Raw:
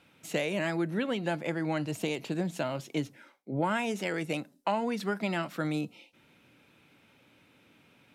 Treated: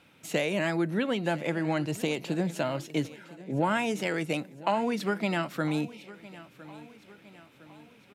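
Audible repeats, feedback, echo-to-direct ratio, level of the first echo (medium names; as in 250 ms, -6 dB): 3, 50%, -17.5 dB, -18.5 dB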